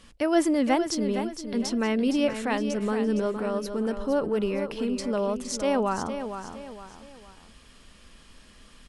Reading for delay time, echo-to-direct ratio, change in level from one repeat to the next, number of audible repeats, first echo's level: 463 ms, -8.5 dB, -8.0 dB, 3, -9.0 dB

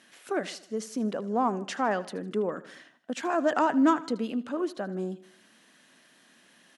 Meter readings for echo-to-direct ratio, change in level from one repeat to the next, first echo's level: -16.5 dB, -6.0 dB, -18.0 dB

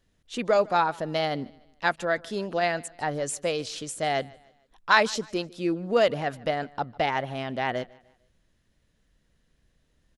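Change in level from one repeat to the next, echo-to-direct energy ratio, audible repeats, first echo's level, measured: -8.0 dB, -23.5 dB, 2, -24.0 dB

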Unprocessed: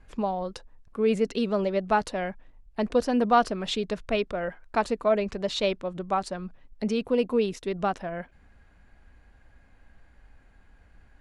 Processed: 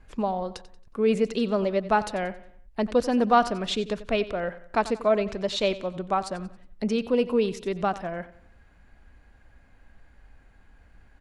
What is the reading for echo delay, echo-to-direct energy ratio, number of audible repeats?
91 ms, -15.0 dB, 3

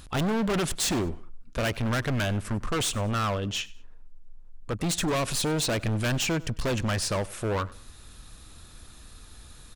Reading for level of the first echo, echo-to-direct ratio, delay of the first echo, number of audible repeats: -21.5 dB, -21.0 dB, 98 ms, 2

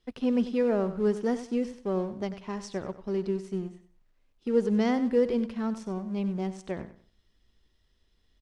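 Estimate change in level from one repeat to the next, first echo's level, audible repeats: -11.5 dB, -13.0 dB, 2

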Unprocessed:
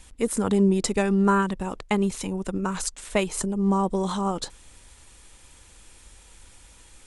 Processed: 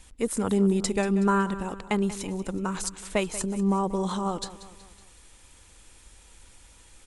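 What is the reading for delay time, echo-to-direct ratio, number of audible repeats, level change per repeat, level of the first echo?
186 ms, -14.0 dB, 4, -6.5 dB, -15.0 dB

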